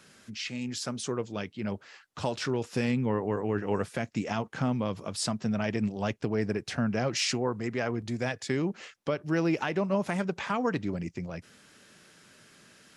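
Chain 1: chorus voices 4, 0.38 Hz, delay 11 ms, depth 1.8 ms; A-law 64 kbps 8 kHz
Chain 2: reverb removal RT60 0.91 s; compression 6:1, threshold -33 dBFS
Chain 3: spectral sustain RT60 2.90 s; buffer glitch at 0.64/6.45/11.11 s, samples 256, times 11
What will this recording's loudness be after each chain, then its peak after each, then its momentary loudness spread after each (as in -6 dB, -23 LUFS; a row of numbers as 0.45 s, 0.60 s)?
-34.0 LUFS, -38.5 LUFS, -26.0 LUFS; -17.0 dBFS, -20.0 dBFS, -9.5 dBFS; 10 LU, 10 LU, 8 LU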